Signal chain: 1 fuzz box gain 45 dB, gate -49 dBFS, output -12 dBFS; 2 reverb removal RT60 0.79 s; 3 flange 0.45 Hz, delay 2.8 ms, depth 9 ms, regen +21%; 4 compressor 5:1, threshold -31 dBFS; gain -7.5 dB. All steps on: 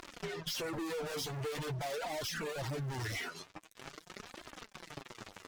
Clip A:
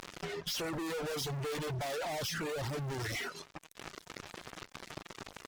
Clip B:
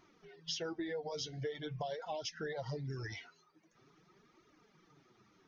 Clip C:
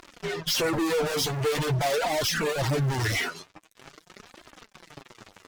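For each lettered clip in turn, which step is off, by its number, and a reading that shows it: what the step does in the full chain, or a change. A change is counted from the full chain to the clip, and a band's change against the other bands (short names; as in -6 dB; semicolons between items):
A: 3, loudness change +1.5 LU; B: 1, distortion -2 dB; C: 4, mean gain reduction 8.0 dB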